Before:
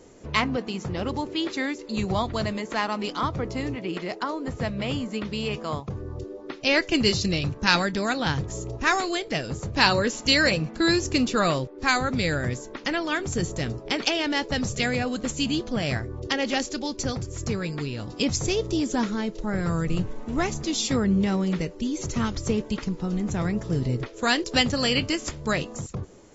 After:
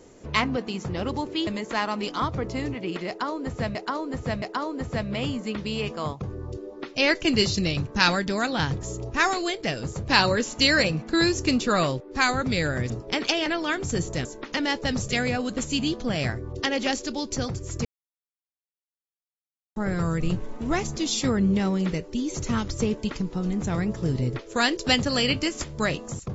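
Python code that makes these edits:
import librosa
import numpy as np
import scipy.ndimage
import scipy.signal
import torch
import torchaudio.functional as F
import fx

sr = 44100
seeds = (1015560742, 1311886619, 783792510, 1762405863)

y = fx.edit(x, sr, fx.cut(start_s=1.47, length_s=1.01),
    fx.repeat(start_s=4.09, length_s=0.67, count=3),
    fx.swap(start_s=12.57, length_s=0.32, other_s=13.68, other_length_s=0.56),
    fx.silence(start_s=17.52, length_s=1.91), tone=tone)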